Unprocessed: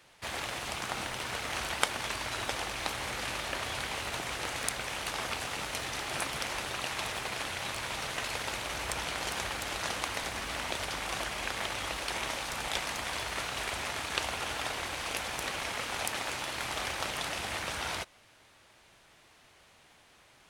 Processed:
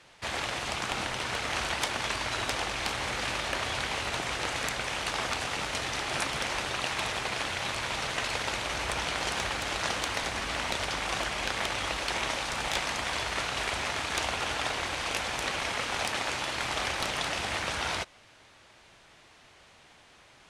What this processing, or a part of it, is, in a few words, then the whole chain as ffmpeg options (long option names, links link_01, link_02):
overflowing digital effects unit: -af "aeval=exprs='(mod(8.91*val(0)+1,2)-1)/8.91':channel_layout=same,lowpass=8200,volume=4dB"